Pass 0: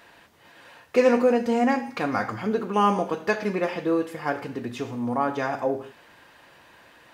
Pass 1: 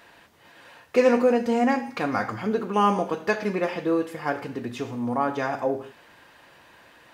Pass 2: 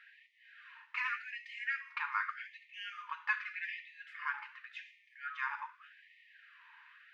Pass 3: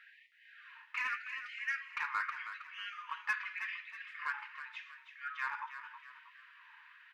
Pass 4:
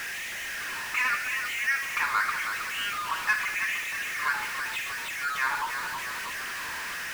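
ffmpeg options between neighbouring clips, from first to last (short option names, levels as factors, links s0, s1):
-af anull
-af "lowpass=f=2300:t=q:w=1.6,afftfilt=real='re*gte(b*sr/1024,840*pow(1800/840,0.5+0.5*sin(2*PI*0.85*pts/sr)))':imag='im*gte(b*sr/1024,840*pow(1800/840,0.5+0.5*sin(2*PI*0.85*pts/sr)))':win_size=1024:overlap=0.75,volume=0.422"
-filter_complex "[0:a]asplit=2[s0][s1];[s1]asoftclip=type=hard:threshold=0.0251,volume=0.631[s2];[s0][s2]amix=inputs=2:normalize=0,asplit=5[s3][s4][s5][s6][s7];[s4]adelay=319,afreqshift=39,volume=0.299[s8];[s5]adelay=638,afreqshift=78,volume=0.126[s9];[s6]adelay=957,afreqshift=117,volume=0.0525[s10];[s7]adelay=1276,afreqshift=156,volume=0.0221[s11];[s3][s8][s9][s10][s11]amix=inputs=5:normalize=0,volume=0.631"
-af "aeval=exprs='val(0)+0.5*0.0133*sgn(val(0))':c=same,volume=2.37"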